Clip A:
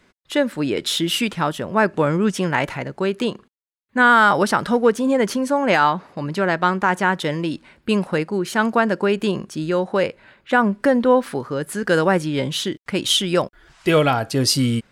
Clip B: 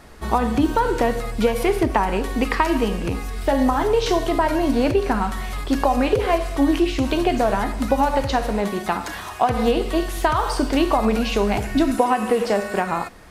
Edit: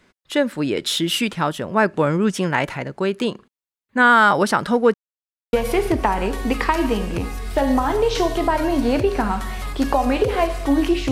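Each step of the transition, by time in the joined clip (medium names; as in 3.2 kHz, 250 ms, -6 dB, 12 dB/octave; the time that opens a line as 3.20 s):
clip A
4.94–5.53 s: mute
5.53 s: go over to clip B from 1.44 s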